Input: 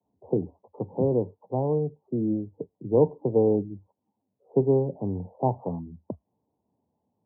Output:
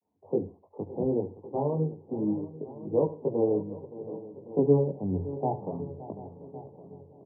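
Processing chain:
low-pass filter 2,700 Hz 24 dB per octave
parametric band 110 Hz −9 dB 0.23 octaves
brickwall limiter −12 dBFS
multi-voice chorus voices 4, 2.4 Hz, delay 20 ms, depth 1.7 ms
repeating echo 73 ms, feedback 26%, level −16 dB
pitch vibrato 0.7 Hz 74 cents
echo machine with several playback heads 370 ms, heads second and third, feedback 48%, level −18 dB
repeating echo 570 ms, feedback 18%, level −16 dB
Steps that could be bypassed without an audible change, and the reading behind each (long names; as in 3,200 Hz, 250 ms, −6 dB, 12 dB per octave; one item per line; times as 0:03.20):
low-pass filter 2,700 Hz: nothing at its input above 960 Hz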